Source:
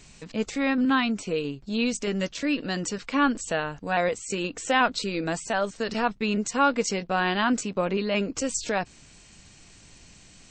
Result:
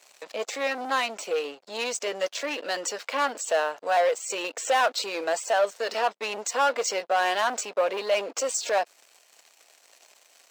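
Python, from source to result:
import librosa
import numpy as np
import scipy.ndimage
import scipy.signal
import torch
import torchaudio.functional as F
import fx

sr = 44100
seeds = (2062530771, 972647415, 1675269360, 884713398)

y = fx.leveller(x, sr, passes=3)
y = fx.ladder_highpass(y, sr, hz=480.0, resonance_pct=40)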